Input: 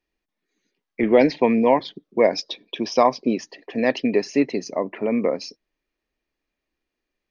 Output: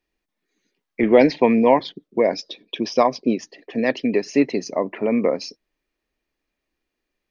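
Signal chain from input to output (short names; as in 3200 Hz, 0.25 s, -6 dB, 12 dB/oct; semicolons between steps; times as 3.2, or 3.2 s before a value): 1.92–4.28 rotary speaker horn 7 Hz; gain +2 dB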